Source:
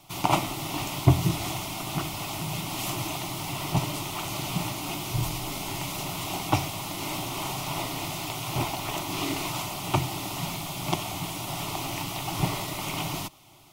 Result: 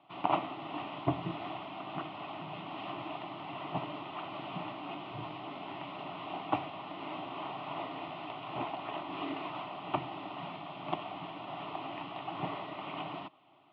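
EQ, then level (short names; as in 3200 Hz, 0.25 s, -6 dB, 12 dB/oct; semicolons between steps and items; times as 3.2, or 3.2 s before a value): air absorption 380 m; speaker cabinet 370–3000 Hz, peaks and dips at 380 Hz -7 dB, 550 Hz -4 dB, 890 Hz -6 dB, 1400 Hz -5 dB, 2200 Hz -9 dB; +1.0 dB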